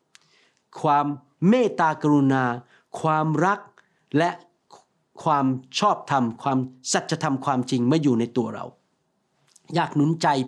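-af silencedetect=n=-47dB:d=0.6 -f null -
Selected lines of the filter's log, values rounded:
silence_start: 8.71
silence_end: 9.48 | silence_duration: 0.77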